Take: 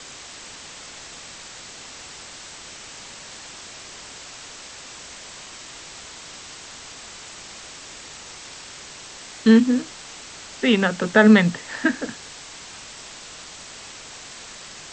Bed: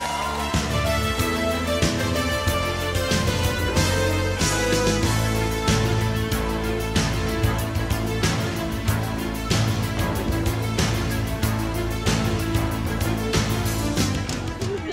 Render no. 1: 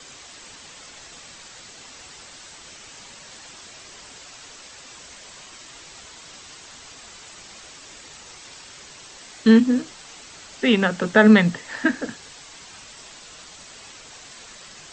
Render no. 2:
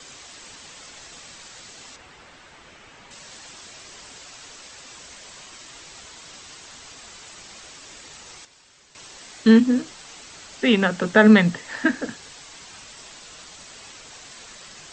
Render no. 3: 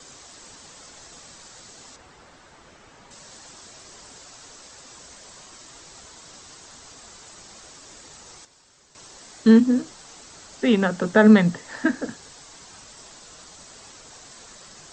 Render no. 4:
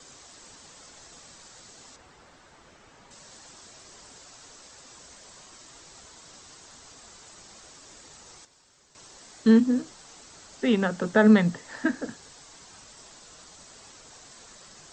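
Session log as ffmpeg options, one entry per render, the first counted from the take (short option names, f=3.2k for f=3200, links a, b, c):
-af "afftdn=nr=6:nf=-41"
-filter_complex "[0:a]asettb=1/sr,asplit=3[a][b][c];[a]atrim=end=1.964[d];[b]atrim=start=1.96:end=3.11,asetpts=PTS-STARTPTS,afade=t=in:d=0.004:c=qsin,afade=t=out:st=1.146:d=0.004:c=qsin,acrossover=split=3000[e][f];[f]acompressor=threshold=-58dB:ratio=4:attack=1:release=60[g];[e][g]amix=inputs=2:normalize=0[h];[c]atrim=start=3.106[i];[d][h]acrossfade=d=0.004:c1=hsin:c2=qsin[j];[j][i]acrossfade=d=0.004:c1=qsin:c2=hsin,asplit=3[k][l][m];[k]atrim=end=8.452[n];[l]atrim=start=8.448:end=8.952,asetpts=PTS-STARTPTS,volume=-11.5dB[o];[m]atrim=start=8.948[p];[n][o]acrossfade=d=0.004:c1=hsin:c2=hsin[q];[q][p]acrossfade=d=0.004:c1=hsin:c2=hsin"
-af "equalizer=f=2.6k:t=o:w=1.3:g=-8"
-af "volume=-4dB"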